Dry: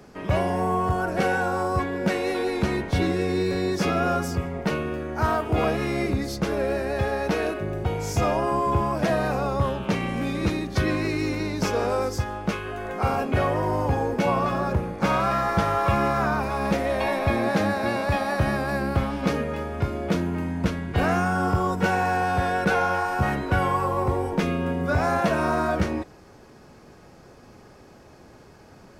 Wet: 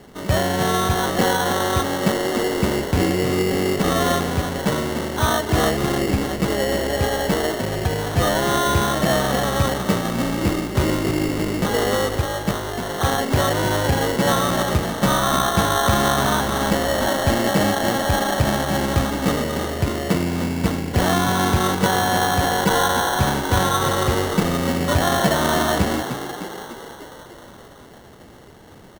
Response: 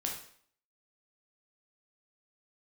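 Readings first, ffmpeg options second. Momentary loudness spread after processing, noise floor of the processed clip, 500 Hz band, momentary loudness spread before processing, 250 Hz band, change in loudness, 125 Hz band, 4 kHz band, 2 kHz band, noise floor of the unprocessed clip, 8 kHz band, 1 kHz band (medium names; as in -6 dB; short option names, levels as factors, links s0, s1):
5 LU, -43 dBFS, +4.0 dB, 5 LU, +4.5 dB, +4.5 dB, +4.0 dB, +12.5 dB, +4.5 dB, -49 dBFS, +14.5 dB, +3.5 dB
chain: -filter_complex "[0:a]asplit=9[s0][s1][s2][s3][s4][s5][s6][s7][s8];[s1]adelay=300,afreqshift=52,volume=0.335[s9];[s2]adelay=600,afreqshift=104,volume=0.211[s10];[s3]adelay=900,afreqshift=156,volume=0.133[s11];[s4]adelay=1200,afreqshift=208,volume=0.0841[s12];[s5]adelay=1500,afreqshift=260,volume=0.0525[s13];[s6]adelay=1800,afreqshift=312,volume=0.0331[s14];[s7]adelay=2100,afreqshift=364,volume=0.0209[s15];[s8]adelay=2400,afreqshift=416,volume=0.0132[s16];[s0][s9][s10][s11][s12][s13][s14][s15][s16]amix=inputs=9:normalize=0,acrusher=samples=18:mix=1:aa=0.000001,volume=1.5"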